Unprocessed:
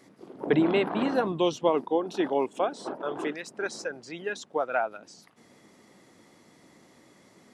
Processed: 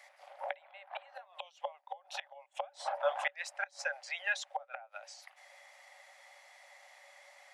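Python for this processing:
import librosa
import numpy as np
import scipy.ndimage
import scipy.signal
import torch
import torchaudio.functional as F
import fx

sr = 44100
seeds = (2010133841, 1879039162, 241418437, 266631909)

y = fx.gate_flip(x, sr, shuts_db=-19.0, range_db=-27)
y = scipy.signal.sosfilt(scipy.signal.cheby1(6, 9, 550.0, 'highpass', fs=sr, output='sos'), y)
y = F.gain(torch.from_numpy(y), 7.0).numpy()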